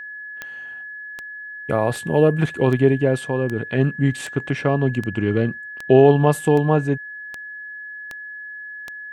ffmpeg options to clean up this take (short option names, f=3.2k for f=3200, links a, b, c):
-af "adeclick=t=4,bandreject=f=1.7k:w=30"